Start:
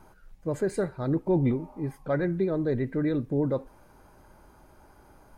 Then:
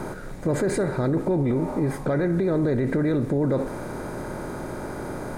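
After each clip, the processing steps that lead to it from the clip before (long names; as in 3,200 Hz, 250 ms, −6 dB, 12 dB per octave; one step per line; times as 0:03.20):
compressor on every frequency bin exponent 0.6
brickwall limiter −24.5 dBFS, peak gain reduction 10.5 dB
level +8.5 dB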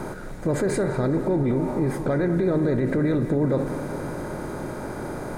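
feedback echo with a low-pass in the loop 200 ms, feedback 73%, low-pass 4,500 Hz, level −12 dB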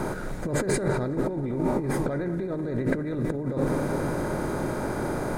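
compressor whose output falls as the input rises −25 dBFS, ratio −0.5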